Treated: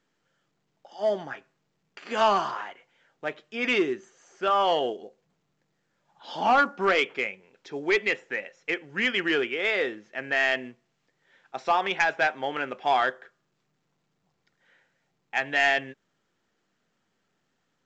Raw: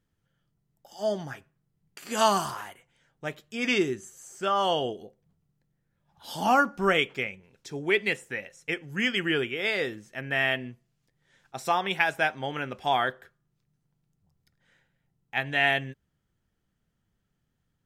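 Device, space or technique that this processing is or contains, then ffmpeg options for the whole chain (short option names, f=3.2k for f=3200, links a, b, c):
telephone: -af "highpass=310,lowpass=3.1k,asoftclip=type=tanh:threshold=-17.5dB,volume=4dB" -ar 16000 -c:a pcm_mulaw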